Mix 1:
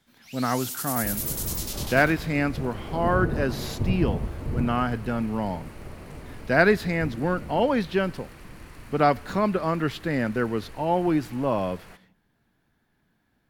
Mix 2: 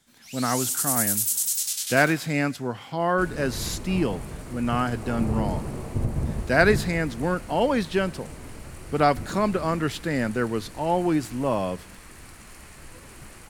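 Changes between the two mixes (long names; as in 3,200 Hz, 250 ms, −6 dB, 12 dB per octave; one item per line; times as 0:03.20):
second sound: entry +2.15 s
master: add parametric band 8,200 Hz +11.5 dB 1.1 octaves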